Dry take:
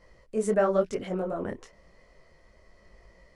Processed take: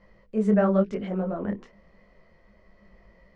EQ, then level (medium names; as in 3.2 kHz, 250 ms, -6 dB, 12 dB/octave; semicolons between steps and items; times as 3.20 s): low-pass 3.3 kHz 12 dB/octave; peaking EQ 200 Hz +13 dB 0.25 oct; hum notches 60/120/180/240/300/360/420/480 Hz; 0.0 dB